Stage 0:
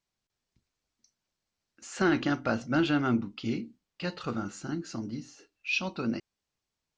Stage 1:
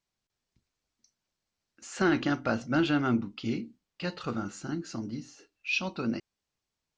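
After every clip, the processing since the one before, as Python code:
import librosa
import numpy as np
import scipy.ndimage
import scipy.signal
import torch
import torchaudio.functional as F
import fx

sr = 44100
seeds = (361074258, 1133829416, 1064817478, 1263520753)

y = x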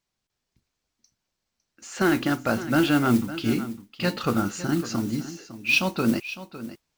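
y = fx.rider(x, sr, range_db=3, speed_s=2.0)
y = fx.mod_noise(y, sr, seeds[0], snr_db=20)
y = y + 10.0 ** (-14.0 / 20.0) * np.pad(y, (int(556 * sr / 1000.0), 0))[:len(y)]
y = y * 10.0 ** (6.5 / 20.0)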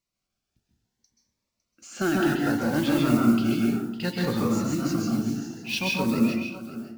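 y = fx.rev_plate(x, sr, seeds[1], rt60_s=0.75, hf_ratio=0.45, predelay_ms=120, drr_db=-2.5)
y = fx.notch_cascade(y, sr, direction='rising', hz=0.63)
y = y * 10.0 ** (-3.5 / 20.0)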